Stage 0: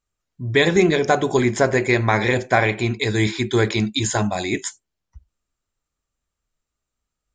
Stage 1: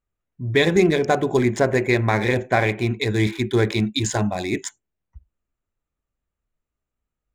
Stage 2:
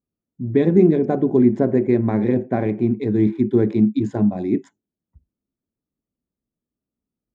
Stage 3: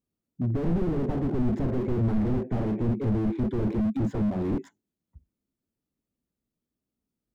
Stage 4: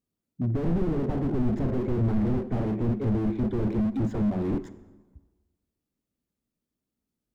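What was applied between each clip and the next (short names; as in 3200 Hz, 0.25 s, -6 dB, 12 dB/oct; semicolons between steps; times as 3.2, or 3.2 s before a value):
Wiener smoothing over 9 samples; bell 1200 Hz -3.5 dB 1.6 oct; notch 3200 Hz, Q 27
band-pass 240 Hz, Q 1.9; gain +8.5 dB
slew limiter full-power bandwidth 15 Hz
reverb RT60 1.3 s, pre-delay 33 ms, DRR 14.5 dB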